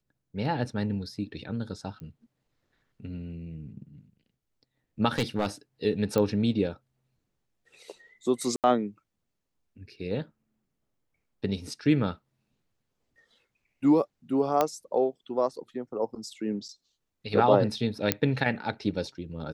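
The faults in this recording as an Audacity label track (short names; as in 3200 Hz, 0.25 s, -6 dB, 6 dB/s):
2.000000	2.000000	pop -31 dBFS
5.180000	5.470000	clipped -20.5 dBFS
6.180000	6.180000	pop -14 dBFS
8.560000	8.640000	gap 78 ms
14.610000	14.610000	pop -10 dBFS
18.120000	18.120000	pop -5 dBFS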